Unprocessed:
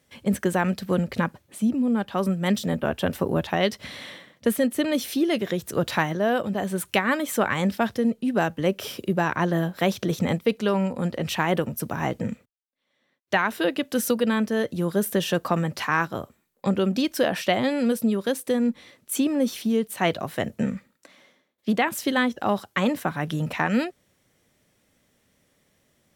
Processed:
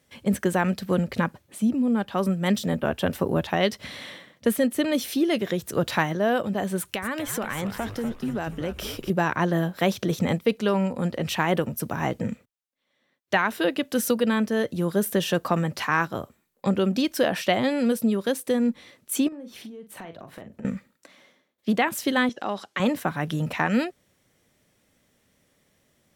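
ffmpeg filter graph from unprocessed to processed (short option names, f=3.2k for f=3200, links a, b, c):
-filter_complex "[0:a]asettb=1/sr,asplit=3[a][b][c];[a]atrim=end=6.784[d];[b]atrim=start=6.78:end=9.1,asetpts=PTS-STARTPTS,afade=t=in:d=0.004:c=qsin,afade=t=out:st=2.316:d=0.004:c=qsin,acompressor=threshold=-25dB:ratio=6:attack=3.2:release=140:knee=1:detection=peak,asplit=7[e][f][g][h][i][j][k];[f]adelay=242,afreqshift=-93,volume=-9.5dB[l];[g]adelay=484,afreqshift=-186,volume=-15.2dB[m];[h]adelay=726,afreqshift=-279,volume=-20.9dB[n];[i]adelay=968,afreqshift=-372,volume=-26.5dB[o];[j]adelay=1210,afreqshift=-465,volume=-32.2dB[p];[k]adelay=1452,afreqshift=-558,volume=-37.9dB[q];[e][l][m][n][o][p][q]amix=inputs=7:normalize=0,atrim=end_sample=102312[r];[c]atrim=start=9.096[s];[d][r]acrossfade=d=0.004:c1=hsin:c2=qsin[t];[t][s]acrossfade=d=0.004:c1=qsin:c2=hsin,asettb=1/sr,asplit=3[u][v][w];[u]atrim=end=19.284[x];[v]atrim=start=19.28:end=20.65,asetpts=PTS-STARTPTS,afade=t=in:d=0.004:c=qsin,afade=t=out:st=1.366:d=0.004:c=qsin,highshelf=f=3k:g=-11,acompressor=threshold=-37dB:ratio=10:attack=3.2:release=140:knee=1:detection=peak,asplit=2[y][z];[z]adelay=42,volume=-9dB[aa];[y][aa]amix=inputs=2:normalize=0,atrim=end_sample=60417[ab];[w]atrim=start=20.646[ac];[x][ab]acrossfade=d=0.004:c1=hsin:c2=qsin[ad];[ad][ac]acrossfade=d=0.004:c1=qsin:c2=hsin,asettb=1/sr,asplit=3[ae][af][ag];[ae]atrim=end=22.294[ah];[af]atrim=start=22.29:end=22.8,asetpts=PTS-STARTPTS,afade=t=in:d=0.004:c=qsin,afade=t=out:st=0.506:d=0.004:c=qsin,highshelf=f=3.9k:g=9,acompressor=threshold=-32dB:ratio=1.5:attack=3.2:release=140:knee=1:detection=peak,highpass=210,lowpass=5.6k[ai];[ag]atrim=start=22.796[aj];[ah][ai]acrossfade=d=0.004:c1=hsin:c2=qsin[ak];[ak][aj]acrossfade=d=0.004:c1=qsin:c2=hsin"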